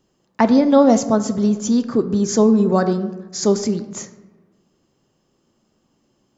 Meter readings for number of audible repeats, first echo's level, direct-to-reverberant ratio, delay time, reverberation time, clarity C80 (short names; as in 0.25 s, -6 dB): none, none, 9.5 dB, none, 1.2 s, 14.5 dB